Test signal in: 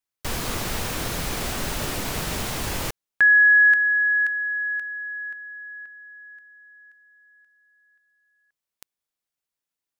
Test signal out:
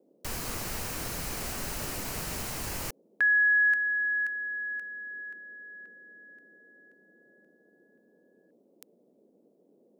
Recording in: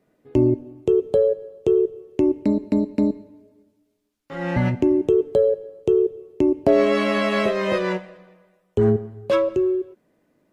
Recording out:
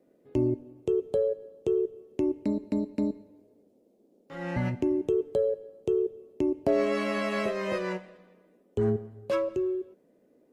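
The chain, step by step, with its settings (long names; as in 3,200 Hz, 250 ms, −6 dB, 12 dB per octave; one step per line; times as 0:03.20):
high-shelf EQ 5,100 Hz +5 dB
noise in a band 190–550 Hz −56 dBFS
dynamic equaliser 3,500 Hz, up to −7 dB, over −49 dBFS, Q 5
level −8.5 dB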